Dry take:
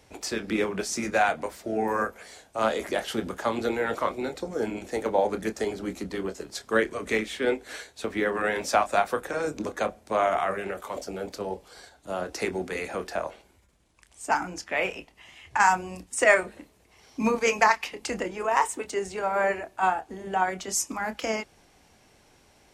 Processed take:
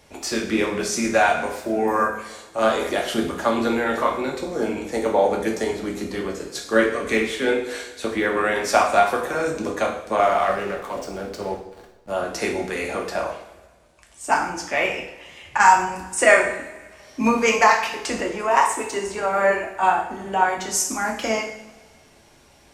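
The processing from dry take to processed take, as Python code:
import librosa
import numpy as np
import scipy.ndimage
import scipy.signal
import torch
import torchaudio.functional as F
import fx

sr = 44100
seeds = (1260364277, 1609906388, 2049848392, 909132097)

y = fx.backlash(x, sr, play_db=-37.5, at=(10.19, 12.11))
y = fx.rev_double_slope(y, sr, seeds[0], early_s=0.63, late_s=1.9, knee_db=-17, drr_db=0.5)
y = y * librosa.db_to_amplitude(3.0)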